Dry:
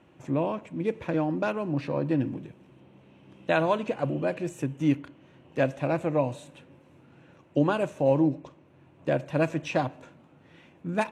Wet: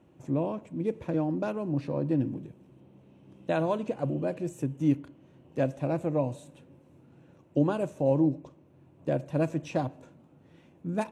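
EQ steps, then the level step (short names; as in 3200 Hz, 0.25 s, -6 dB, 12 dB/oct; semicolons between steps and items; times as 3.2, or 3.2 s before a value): bell 2100 Hz -10 dB 2.7 oct; 0.0 dB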